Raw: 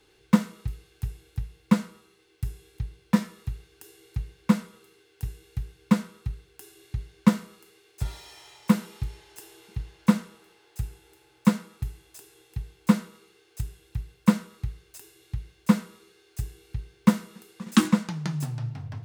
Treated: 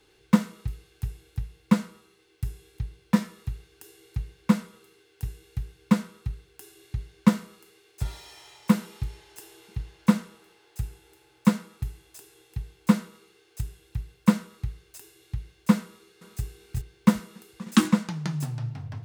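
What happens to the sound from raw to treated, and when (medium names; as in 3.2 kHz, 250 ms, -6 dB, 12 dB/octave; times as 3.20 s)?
15.83–16.43 s: echo throw 380 ms, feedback 15%, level -2 dB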